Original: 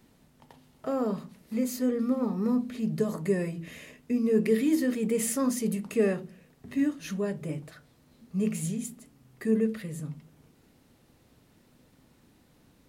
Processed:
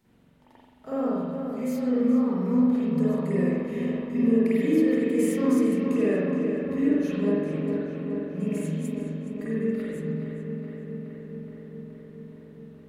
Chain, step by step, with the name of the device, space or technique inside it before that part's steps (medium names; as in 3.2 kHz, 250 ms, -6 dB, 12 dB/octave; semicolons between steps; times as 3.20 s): dub delay into a spring reverb (filtered feedback delay 421 ms, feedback 77%, low-pass 3.9 kHz, level -6.5 dB; spring tank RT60 1.2 s, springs 44 ms, chirp 65 ms, DRR -9.5 dB); trim -9 dB